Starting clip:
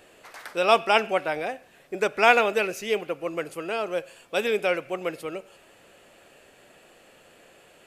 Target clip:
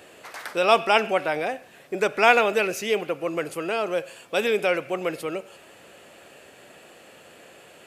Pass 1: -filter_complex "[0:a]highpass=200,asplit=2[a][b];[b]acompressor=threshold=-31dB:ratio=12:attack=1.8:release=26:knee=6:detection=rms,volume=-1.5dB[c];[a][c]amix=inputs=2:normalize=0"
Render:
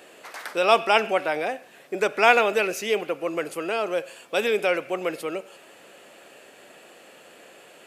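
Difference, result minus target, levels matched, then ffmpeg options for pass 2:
125 Hz band -4.0 dB
-filter_complex "[0:a]highpass=73,asplit=2[a][b];[b]acompressor=threshold=-31dB:ratio=12:attack=1.8:release=26:knee=6:detection=rms,volume=-1.5dB[c];[a][c]amix=inputs=2:normalize=0"

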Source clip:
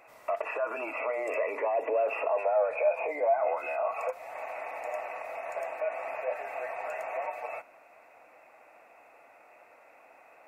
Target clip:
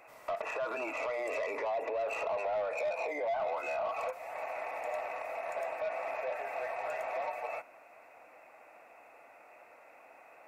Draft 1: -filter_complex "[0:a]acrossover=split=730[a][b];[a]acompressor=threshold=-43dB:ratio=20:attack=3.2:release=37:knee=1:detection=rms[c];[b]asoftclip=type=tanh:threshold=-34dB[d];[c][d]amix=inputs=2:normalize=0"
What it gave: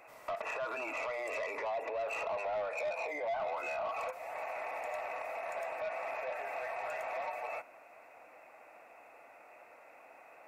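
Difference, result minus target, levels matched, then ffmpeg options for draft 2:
compressor: peak gain reduction +6.5 dB
-filter_complex "[0:a]acrossover=split=730[a][b];[a]acompressor=threshold=-36dB:ratio=20:attack=3.2:release=37:knee=1:detection=rms[c];[b]asoftclip=type=tanh:threshold=-34dB[d];[c][d]amix=inputs=2:normalize=0"

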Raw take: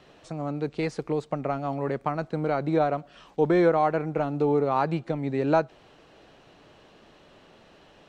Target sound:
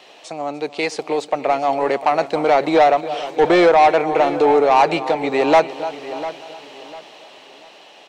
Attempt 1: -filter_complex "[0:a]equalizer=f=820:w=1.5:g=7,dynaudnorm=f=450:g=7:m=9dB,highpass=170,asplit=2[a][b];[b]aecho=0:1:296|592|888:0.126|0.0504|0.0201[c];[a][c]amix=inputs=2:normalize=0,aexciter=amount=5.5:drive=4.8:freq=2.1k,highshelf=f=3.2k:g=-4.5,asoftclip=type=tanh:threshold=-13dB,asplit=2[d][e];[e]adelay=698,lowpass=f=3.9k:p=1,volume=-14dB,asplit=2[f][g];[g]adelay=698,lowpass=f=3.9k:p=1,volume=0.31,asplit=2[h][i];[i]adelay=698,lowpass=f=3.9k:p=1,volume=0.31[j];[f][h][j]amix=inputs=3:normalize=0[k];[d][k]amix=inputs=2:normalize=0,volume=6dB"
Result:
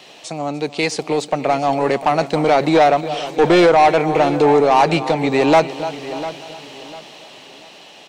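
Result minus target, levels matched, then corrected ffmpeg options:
125 Hz band +9.5 dB; 8000 Hz band +5.0 dB
-filter_complex "[0:a]equalizer=f=820:w=1.5:g=7,dynaudnorm=f=450:g=7:m=9dB,highpass=370,asplit=2[a][b];[b]aecho=0:1:296|592|888:0.126|0.0504|0.0201[c];[a][c]amix=inputs=2:normalize=0,aexciter=amount=5.5:drive=4.8:freq=2.1k,highshelf=f=3.2k:g=-12.5,asoftclip=type=tanh:threshold=-13dB,asplit=2[d][e];[e]adelay=698,lowpass=f=3.9k:p=1,volume=-14dB,asplit=2[f][g];[g]adelay=698,lowpass=f=3.9k:p=1,volume=0.31,asplit=2[h][i];[i]adelay=698,lowpass=f=3.9k:p=1,volume=0.31[j];[f][h][j]amix=inputs=3:normalize=0[k];[d][k]amix=inputs=2:normalize=0,volume=6dB"

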